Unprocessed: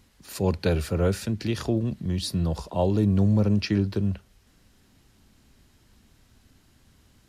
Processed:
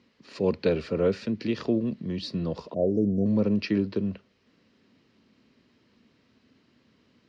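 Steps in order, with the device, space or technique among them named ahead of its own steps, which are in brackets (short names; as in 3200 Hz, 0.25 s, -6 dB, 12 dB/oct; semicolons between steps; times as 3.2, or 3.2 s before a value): 2.74–3.26 Chebyshev band-stop 700–5600 Hz, order 5; kitchen radio (speaker cabinet 190–4500 Hz, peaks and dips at 240 Hz +4 dB, 470 Hz +4 dB, 790 Hz -8 dB, 1500 Hz -5 dB, 3500 Hz -5 dB)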